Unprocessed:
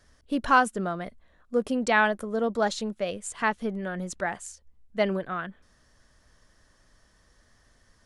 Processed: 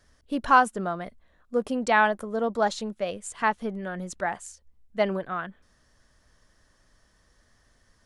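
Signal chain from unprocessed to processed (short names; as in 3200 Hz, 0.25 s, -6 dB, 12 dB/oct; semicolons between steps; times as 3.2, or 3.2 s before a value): dynamic EQ 890 Hz, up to +5 dB, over -37 dBFS, Q 1.3; gain -1.5 dB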